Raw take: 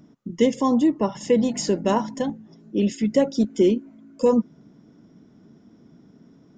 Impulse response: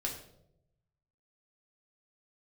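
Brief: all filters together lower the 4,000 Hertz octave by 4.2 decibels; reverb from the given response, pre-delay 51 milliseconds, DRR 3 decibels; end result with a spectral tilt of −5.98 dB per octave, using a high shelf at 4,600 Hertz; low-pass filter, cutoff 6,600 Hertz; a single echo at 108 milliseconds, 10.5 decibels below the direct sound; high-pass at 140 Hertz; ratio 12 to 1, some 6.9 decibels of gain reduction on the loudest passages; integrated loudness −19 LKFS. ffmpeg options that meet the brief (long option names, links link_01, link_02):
-filter_complex "[0:a]highpass=140,lowpass=6600,equalizer=frequency=4000:width_type=o:gain=-8,highshelf=frequency=4600:gain=4,acompressor=threshold=-20dB:ratio=12,aecho=1:1:108:0.299,asplit=2[link_01][link_02];[1:a]atrim=start_sample=2205,adelay=51[link_03];[link_02][link_03]afir=irnorm=-1:irlink=0,volume=-5dB[link_04];[link_01][link_04]amix=inputs=2:normalize=0,volume=5.5dB"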